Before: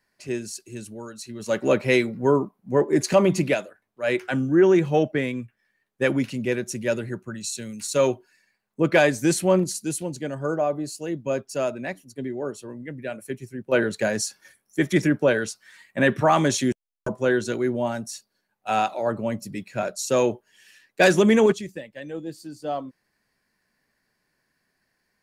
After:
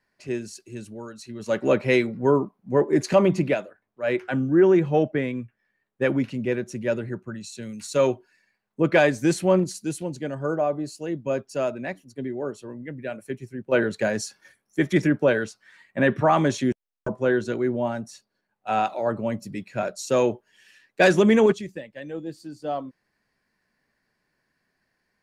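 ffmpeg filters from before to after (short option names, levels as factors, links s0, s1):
-af "asetnsamples=n=441:p=0,asendcmd='3.28 lowpass f 2000;7.63 lowpass f 3800;15.44 lowpass f 2200;18.85 lowpass f 4300',lowpass=f=3600:p=1"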